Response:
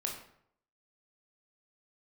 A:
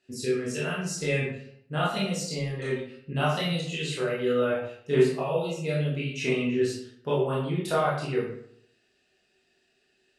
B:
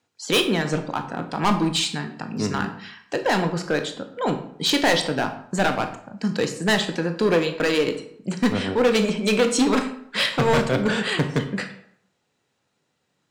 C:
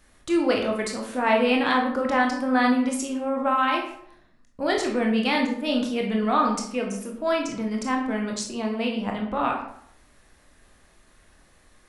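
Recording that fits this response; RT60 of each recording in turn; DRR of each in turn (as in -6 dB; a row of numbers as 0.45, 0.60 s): C; 0.70, 0.70, 0.70 s; -7.0, 6.0, 0.0 dB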